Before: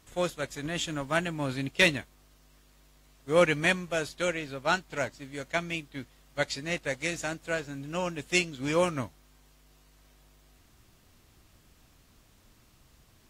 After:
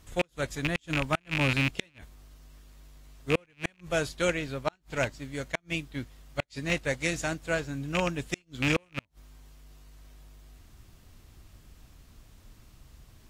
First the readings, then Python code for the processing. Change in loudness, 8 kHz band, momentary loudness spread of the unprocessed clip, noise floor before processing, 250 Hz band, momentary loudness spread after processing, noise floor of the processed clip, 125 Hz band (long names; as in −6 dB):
−1.0 dB, −2.5 dB, 12 LU, −62 dBFS, 0.0 dB, 11 LU, −64 dBFS, +3.0 dB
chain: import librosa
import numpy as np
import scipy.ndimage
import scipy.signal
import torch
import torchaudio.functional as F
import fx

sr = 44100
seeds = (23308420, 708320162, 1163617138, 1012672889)

y = fx.rattle_buzz(x, sr, strikes_db=-35.0, level_db=-17.0)
y = fx.low_shelf(y, sr, hz=110.0, db=11.0)
y = fx.cheby_harmonics(y, sr, harmonics=(7,), levels_db=(-42,), full_scale_db=-8.0)
y = fx.gate_flip(y, sr, shuts_db=-15.0, range_db=-39)
y = y * 10.0 ** (2.0 / 20.0)